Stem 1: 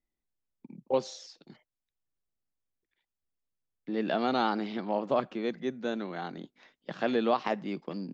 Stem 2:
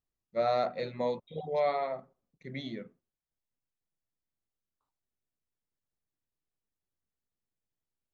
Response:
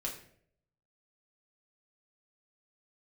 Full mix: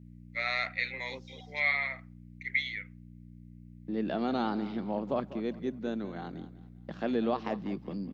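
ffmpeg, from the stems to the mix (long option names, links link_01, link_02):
-filter_complex "[0:a]agate=range=-17dB:threshold=-50dB:ratio=16:detection=peak,equalizer=frequency=170:width_type=o:width=1.6:gain=-6,volume=-7dB,asplit=2[link_01][link_02];[link_02]volume=-15.5dB[link_03];[1:a]highpass=frequency=2100:width_type=q:width=5.8,aeval=exprs='val(0)+0.001*(sin(2*PI*60*n/s)+sin(2*PI*2*60*n/s)/2+sin(2*PI*3*60*n/s)/3+sin(2*PI*4*60*n/s)/4+sin(2*PI*5*60*n/s)/5)':channel_layout=same,volume=3dB,asplit=2[link_04][link_05];[link_05]apad=whole_len=358748[link_06];[link_01][link_06]sidechaincompress=threshold=-49dB:ratio=8:attack=28:release=818[link_07];[link_03]aecho=0:1:196|392|588|784|980:1|0.32|0.102|0.0328|0.0105[link_08];[link_07][link_04][link_08]amix=inputs=3:normalize=0,equalizer=frequency=180:width_type=o:width=2:gain=14"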